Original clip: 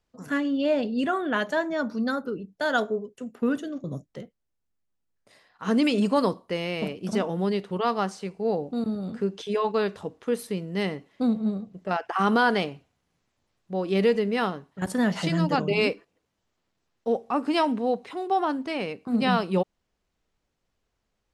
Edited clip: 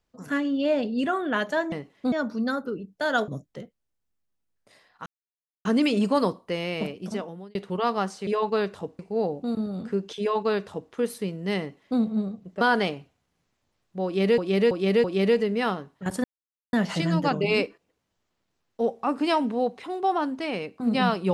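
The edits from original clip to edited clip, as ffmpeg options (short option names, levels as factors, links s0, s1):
-filter_complex "[0:a]asplit=13[s0][s1][s2][s3][s4][s5][s6][s7][s8][s9][s10][s11][s12];[s0]atrim=end=1.722[s13];[s1]atrim=start=10.878:end=11.282[s14];[s2]atrim=start=1.718:end=2.882[s15];[s3]atrim=start=3.878:end=5.66,asetpts=PTS-STARTPTS,afade=t=out:st=1.778:d=0.004:c=hsin,apad=pad_dur=0.59[s16];[s4]atrim=start=5.66:end=7.56,asetpts=PTS-STARTPTS,afade=t=in:d=0.004:c=hsin,afade=t=out:st=1.18:d=0.72[s17];[s5]atrim=start=7.56:end=8.282,asetpts=PTS-STARTPTS,afade=t=in:d=0.004:c=hsin[s18];[s6]atrim=start=9.488:end=10.212[s19];[s7]atrim=start=8.278:end=11.902[s20];[s8]atrim=start=12.358:end=14.132[s21];[s9]atrim=start=13.798:end=14.132[s22];[s10]atrim=start=13.798:end=14.132[s23];[s11]atrim=start=13.798:end=15,asetpts=PTS-STARTPTS,afade=t=out:st=1.198:d=0.004:c=hsin,apad=pad_dur=0.49[s24];[s12]atrim=start=15,asetpts=PTS-STARTPTS,afade=t=in:d=0.004:c=hsin[s25];[s13][s14]acrossfade=d=0.004:c1=hsin:c2=hsin[s26];[s26][s15]acrossfade=d=0.004:c1=hsin:c2=hsin[s27];[s16][s17][s18]concat=n=3:v=0:a=1[s28];[s27][s28]acrossfade=d=0.004:c1=hsin:c2=hsin[s29];[s29][s19]acrossfade=d=0.004:c1=hsin:c2=hsin[s30];[s30][s20]acrossfade=d=0.004:c1=hsin:c2=hsin[s31];[s31][s21]acrossfade=d=0.004:c1=hsin:c2=hsin[s32];[s32][s22]acrossfade=d=0.004:c1=hsin:c2=hsin[s33];[s33][s23]acrossfade=d=0.004:c1=hsin:c2=hsin[s34];[s24][s25]concat=n=2:v=0:a=1[s35];[s34][s35]acrossfade=d=0.004:c1=hsin:c2=hsin"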